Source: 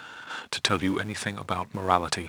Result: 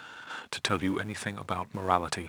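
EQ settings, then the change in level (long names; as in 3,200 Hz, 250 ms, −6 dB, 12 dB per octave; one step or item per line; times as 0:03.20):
dynamic equaliser 4,700 Hz, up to −4 dB, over −43 dBFS, Q 0.94
−3.0 dB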